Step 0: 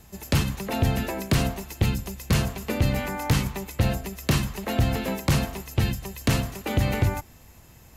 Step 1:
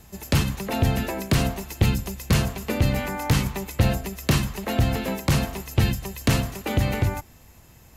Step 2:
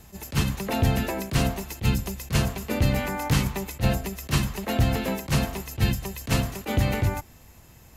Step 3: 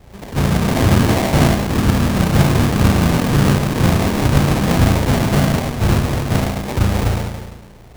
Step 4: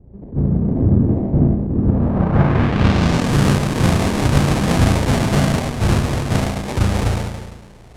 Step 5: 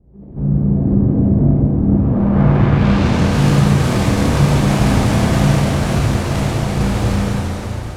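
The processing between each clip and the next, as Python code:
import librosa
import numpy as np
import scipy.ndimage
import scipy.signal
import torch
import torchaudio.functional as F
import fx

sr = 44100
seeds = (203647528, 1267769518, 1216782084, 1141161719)

y1 = fx.rider(x, sr, range_db=10, speed_s=0.5)
y1 = y1 * librosa.db_to_amplitude(1.5)
y2 = fx.attack_slew(y1, sr, db_per_s=330.0)
y3 = fx.room_flutter(y2, sr, wall_m=6.0, rt60_s=1.3)
y3 = fx.echo_pitch(y3, sr, ms=196, semitones=3, count=3, db_per_echo=-3.0)
y3 = fx.sample_hold(y3, sr, seeds[0], rate_hz=1400.0, jitter_pct=20)
y3 = y3 * librosa.db_to_amplitude(3.5)
y4 = fx.filter_sweep_lowpass(y3, sr, from_hz=340.0, to_hz=10000.0, start_s=1.74, end_s=3.34, q=0.95)
y4 = y4 * librosa.db_to_amplitude(-1.0)
y5 = fx.rev_plate(y4, sr, seeds[1], rt60_s=4.6, hf_ratio=0.9, predelay_ms=0, drr_db=-6.5)
y5 = y5 * librosa.db_to_amplitude(-6.5)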